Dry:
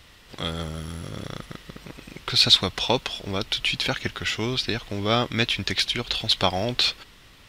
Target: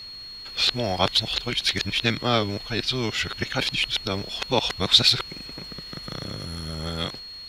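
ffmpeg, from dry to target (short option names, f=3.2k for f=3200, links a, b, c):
-af "areverse,aeval=exprs='val(0)+0.0141*sin(2*PI*4300*n/s)':c=same"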